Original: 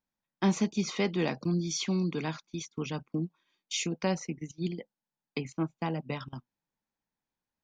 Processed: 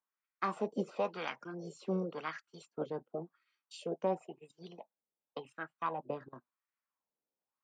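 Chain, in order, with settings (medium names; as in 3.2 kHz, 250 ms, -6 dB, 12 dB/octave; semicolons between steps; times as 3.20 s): wah-wah 0.93 Hz 380–1400 Hz, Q 2.1; formant shift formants +4 st; trim +2.5 dB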